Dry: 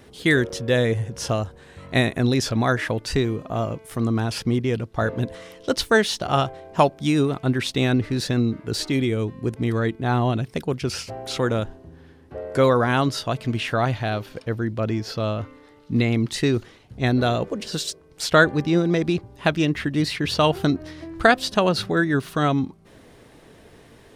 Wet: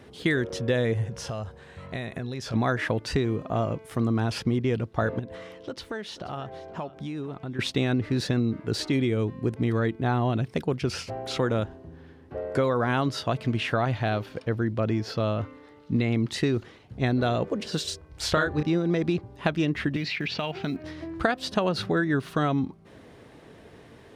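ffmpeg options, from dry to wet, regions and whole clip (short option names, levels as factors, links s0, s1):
-filter_complex "[0:a]asettb=1/sr,asplit=3[s0][s1][s2];[s0]atrim=end=1.064[s3];[s1]atrim=start=1.06:end=2.54,asetpts=PTS-STARTPTS,afade=t=in:d=0.004:c=qsin,afade=t=out:st=1.476:d=0.004:c=qsin,equalizer=f=300:t=o:w=0.39:g=-9,acompressor=threshold=0.0398:ratio=10:attack=3.2:release=140:knee=1:detection=peak,bandreject=f=423:t=h:w=4,bandreject=f=846:t=h:w=4,bandreject=f=1269:t=h:w=4,bandreject=f=1692:t=h:w=4,bandreject=f=2115:t=h:w=4,bandreject=f=2538:t=h:w=4,bandreject=f=2961:t=h:w=4,bandreject=f=3384:t=h:w=4,bandreject=f=3807:t=h:w=4,bandreject=f=4230:t=h:w=4,bandreject=f=4653:t=h:w=4,bandreject=f=5076:t=h:w=4,bandreject=f=5499:t=h:w=4,bandreject=f=5922:t=h:w=4,bandreject=f=6345:t=h:w=4,bandreject=f=6768:t=h:w=4,bandreject=f=7191:t=h:w=4,bandreject=f=7614:t=h:w=4,bandreject=f=8037:t=h:w=4,bandreject=f=8460:t=h:w=4,bandreject=f=8883:t=h:w=4,bandreject=f=9306:t=h:w=4,bandreject=f=9729:t=h:w=4,bandreject=f=10152:t=h:w=4,bandreject=f=10575:t=h:w=4[s4];[s2]atrim=start=2.536[s5];[s3][s4]acrossfade=d=0.004:c1=hsin:c2=qsin[s6];[s6][s5]acrossfade=d=0.004:c1=qsin:c2=hsin,asettb=1/sr,asplit=3[s7][s8][s9];[s7]atrim=end=5.194[s10];[s8]atrim=start=5.19:end=7.59,asetpts=PTS-STARTPTS,afade=t=in:d=0.004:c=qsin,afade=t=out:st=2.396:d=0.004:c=qsin,highshelf=f=5200:g=-6.5,acompressor=threshold=0.0224:ratio=4:attack=3.2:release=140:knee=1:detection=peak,aecho=1:1:483:0.133,atrim=end_sample=105840[s11];[s9]atrim=start=7.586[s12];[s10][s11]acrossfade=d=0.004:c1=hsin:c2=qsin[s13];[s13][s12]acrossfade=d=0.004:c1=qsin:c2=hsin,asettb=1/sr,asplit=3[s14][s15][s16];[s14]atrim=end=17.844[s17];[s15]atrim=start=17.84:end=18.63,asetpts=PTS-STARTPTS,afade=t=in:d=0.004:c=qsin,afade=t=out:st=0.786:d=0.004:c=qsin,lowshelf=f=110:t=q:w=1.5:g=11.5,asplit=2[s18][s19];[s19]adelay=33,volume=0.708[s20];[s18][s20]amix=inputs=2:normalize=0,atrim=end_sample=34839[s21];[s16]atrim=start=18.626[s22];[s17][s21]acrossfade=d=0.004:c1=hsin:c2=qsin[s23];[s23][s22]acrossfade=d=0.004:c1=qsin:c2=hsin,asettb=1/sr,asplit=3[s24][s25][s26];[s24]atrim=end=19.964[s27];[s25]atrim=start=19.96:end=20.84,asetpts=PTS-STARTPTS,afade=t=in:d=0.004:c=qsin,afade=t=out:st=0.876:d=0.004:c=qsin,highpass=150,equalizer=f=320:t=q:w=4:g=-6,equalizer=f=510:t=q:w=4:g=-7,equalizer=f=1100:t=q:w=4:g=-6,equalizer=f=2400:t=q:w=4:g=10,lowpass=f=5900:w=0.5412,lowpass=f=5900:w=1.3066,acompressor=threshold=0.0631:ratio=10:attack=3.2:release=140:knee=1:detection=peak,acrusher=bits=8:mode=log:mix=0:aa=0.000001[s28];[s26]atrim=start=20.836[s29];[s27][s28]acrossfade=d=0.004:c1=hsin:c2=qsin[s30];[s30][s29]acrossfade=d=0.004:c1=qsin:c2=hsin,highpass=56,highshelf=f=5600:g=-10,acompressor=threshold=0.1:ratio=10"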